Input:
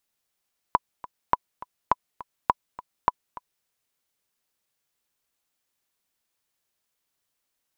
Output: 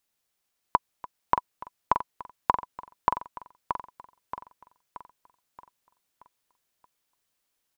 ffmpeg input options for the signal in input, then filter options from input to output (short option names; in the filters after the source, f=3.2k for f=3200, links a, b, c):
-f lavfi -i "aevalsrc='pow(10,(-5-18.5*gte(mod(t,2*60/206),60/206))/20)*sin(2*PI*991*mod(t,60/206))*exp(-6.91*mod(t,60/206)/0.03)':d=2.91:s=44100"
-af "aecho=1:1:627|1254|1881|2508|3135|3762:0.447|0.21|0.0987|0.0464|0.0218|0.0102"